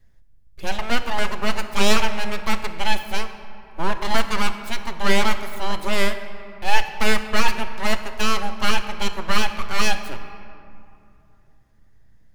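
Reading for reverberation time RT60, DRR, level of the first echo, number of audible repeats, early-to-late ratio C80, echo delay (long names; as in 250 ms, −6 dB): 2.7 s, 8.0 dB, no echo audible, no echo audible, 10.5 dB, no echo audible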